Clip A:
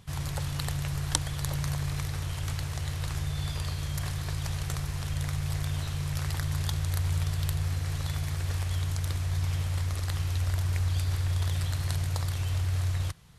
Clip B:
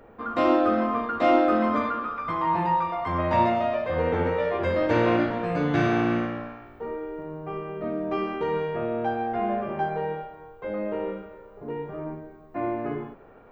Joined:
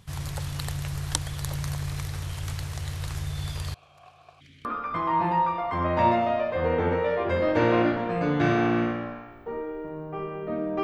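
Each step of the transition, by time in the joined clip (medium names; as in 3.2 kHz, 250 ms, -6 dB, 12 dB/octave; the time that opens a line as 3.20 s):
clip A
3.74–4.65 s: stepped vowel filter 1.5 Hz
4.65 s: go over to clip B from 1.99 s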